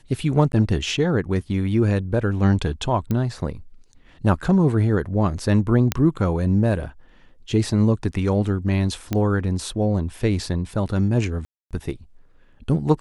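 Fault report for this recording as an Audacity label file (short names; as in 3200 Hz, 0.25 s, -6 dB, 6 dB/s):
0.520000	0.530000	gap 11 ms
3.110000	3.110000	pop -13 dBFS
5.920000	5.920000	pop -4 dBFS
9.130000	9.130000	pop -10 dBFS
11.450000	11.710000	gap 0.257 s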